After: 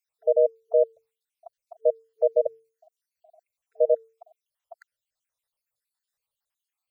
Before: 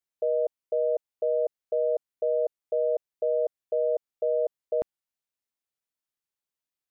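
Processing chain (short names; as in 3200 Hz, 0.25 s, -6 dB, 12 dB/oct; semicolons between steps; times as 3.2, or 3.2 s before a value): random spectral dropouts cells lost 65%; notches 50/100/150/200/250/300/350/400/450 Hz; FFT band-reject 160–450 Hz; gain +8 dB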